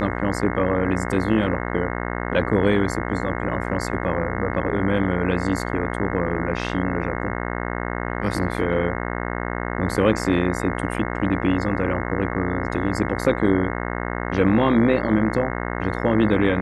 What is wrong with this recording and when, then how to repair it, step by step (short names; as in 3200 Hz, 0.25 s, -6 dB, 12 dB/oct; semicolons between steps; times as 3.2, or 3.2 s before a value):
buzz 60 Hz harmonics 36 -27 dBFS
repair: de-hum 60 Hz, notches 36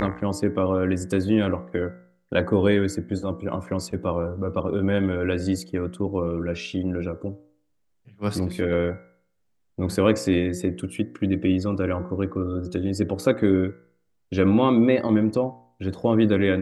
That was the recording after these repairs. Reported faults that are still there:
none